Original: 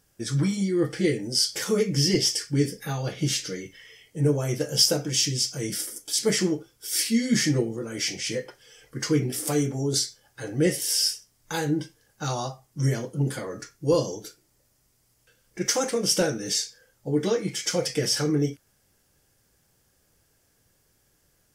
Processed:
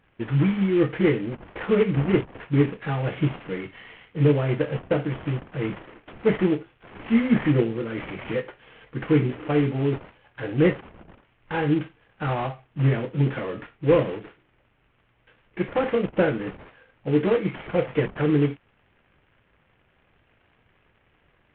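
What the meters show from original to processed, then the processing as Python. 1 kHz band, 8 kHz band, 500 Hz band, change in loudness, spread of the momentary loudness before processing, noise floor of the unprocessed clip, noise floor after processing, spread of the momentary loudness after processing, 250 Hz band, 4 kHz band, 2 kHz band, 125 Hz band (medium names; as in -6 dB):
+4.0 dB, under -40 dB, +3.5 dB, +1.0 dB, 12 LU, -67 dBFS, -65 dBFS, 13 LU, +3.5 dB, -15.5 dB, +2.5 dB, +3.5 dB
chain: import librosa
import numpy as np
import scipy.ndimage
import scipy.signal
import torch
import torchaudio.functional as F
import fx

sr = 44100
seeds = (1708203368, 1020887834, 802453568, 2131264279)

y = fx.cvsd(x, sr, bps=16000)
y = F.gain(torch.from_numpy(y), 4.0).numpy()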